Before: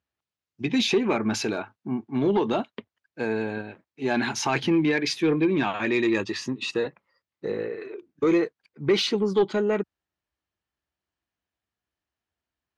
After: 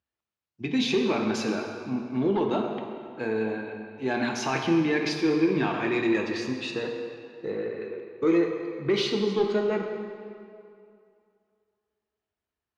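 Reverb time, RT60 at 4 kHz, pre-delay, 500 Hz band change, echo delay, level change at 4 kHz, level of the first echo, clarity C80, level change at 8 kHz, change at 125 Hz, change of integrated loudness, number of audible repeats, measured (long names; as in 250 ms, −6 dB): 2.5 s, 1.7 s, 3 ms, −1.0 dB, no echo audible, −3.5 dB, no echo audible, 5.0 dB, −5.5 dB, −2.0 dB, −2.0 dB, no echo audible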